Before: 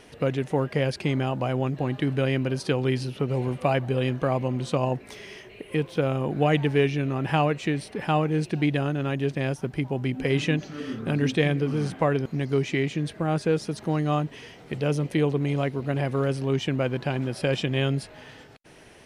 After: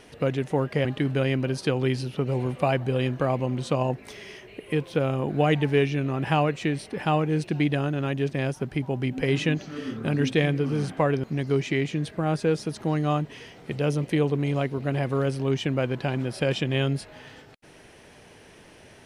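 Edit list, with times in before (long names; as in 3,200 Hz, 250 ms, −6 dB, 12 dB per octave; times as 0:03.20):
0:00.85–0:01.87: remove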